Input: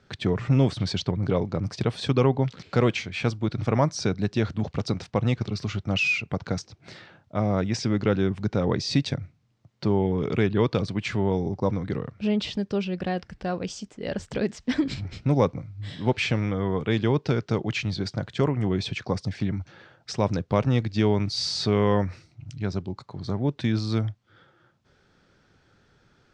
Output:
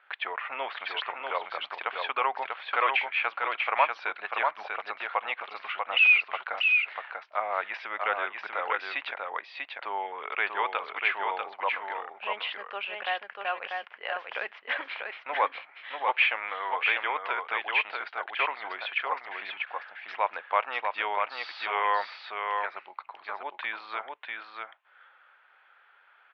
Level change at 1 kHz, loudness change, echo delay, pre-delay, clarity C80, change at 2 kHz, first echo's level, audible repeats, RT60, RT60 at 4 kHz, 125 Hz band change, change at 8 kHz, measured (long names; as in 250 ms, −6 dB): +5.5 dB, −3.0 dB, 642 ms, no reverb audible, no reverb audible, +7.0 dB, −4.0 dB, 1, no reverb audible, no reverb audible, below −40 dB, below −30 dB